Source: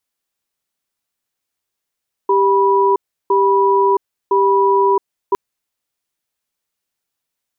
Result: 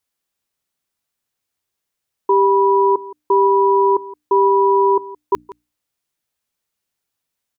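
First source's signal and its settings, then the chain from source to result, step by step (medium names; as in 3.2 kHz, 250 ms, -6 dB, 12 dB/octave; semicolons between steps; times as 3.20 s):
cadence 394 Hz, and 979 Hz, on 0.67 s, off 0.34 s, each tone -13 dBFS 3.06 s
peaking EQ 92 Hz +4.5 dB 2.1 oct; hum notches 60/120/180/240/300 Hz; echo from a far wall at 29 m, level -19 dB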